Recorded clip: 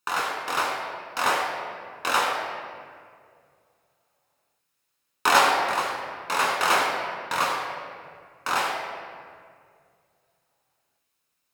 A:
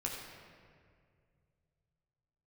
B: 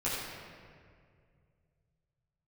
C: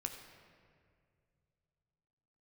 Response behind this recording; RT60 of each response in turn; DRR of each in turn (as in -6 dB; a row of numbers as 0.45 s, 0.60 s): A; 2.1 s, 2.1 s, 2.2 s; -2.0 dB, -9.5 dB, 4.5 dB